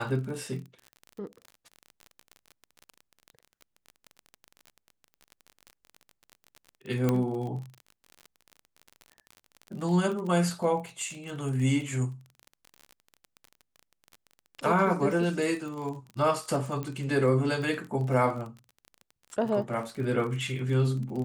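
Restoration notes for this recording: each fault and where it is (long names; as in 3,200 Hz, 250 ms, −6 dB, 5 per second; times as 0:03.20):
surface crackle 33 per second −35 dBFS
0:07.09: click −13 dBFS
0:16.83: click −22 dBFS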